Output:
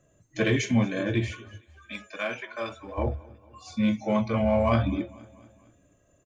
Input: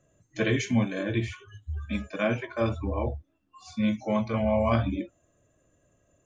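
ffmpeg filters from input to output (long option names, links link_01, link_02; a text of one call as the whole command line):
ffmpeg -i in.wav -filter_complex "[0:a]aecho=1:1:230|460|690|920:0.0708|0.0375|0.0199|0.0105,asplit=2[link_01][link_02];[link_02]asoftclip=type=hard:threshold=-24dB,volume=-11dB[link_03];[link_01][link_03]amix=inputs=2:normalize=0,asplit=3[link_04][link_05][link_06];[link_04]afade=type=out:start_time=1.6:duration=0.02[link_07];[link_05]highpass=frequency=1200:poles=1,afade=type=in:start_time=1.6:duration=0.02,afade=type=out:start_time=2.97:duration=0.02[link_08];[link_06]afade=type=in:start_time=2.97:duration=0.02[link_09];[link_07][link_08][link_09]amix=inputs=3:normalize=0" out.wav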